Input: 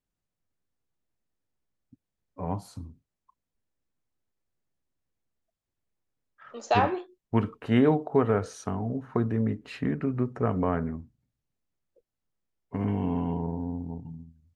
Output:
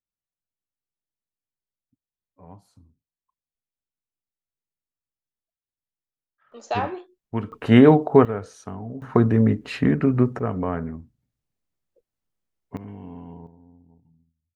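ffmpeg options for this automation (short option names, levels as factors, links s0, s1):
-af "asetnsamples=n=441:p=0,asendcmd='6.52 volume volume -2.5dB;7.52 volume volume 9dB;8.25 volume volume -3.5dB;9.02 volume volume 9dB;10.39 volume volume 0.5dB;12.77 volume volume -11dB;13.47 volume volume -19.5dB',volume=0.2"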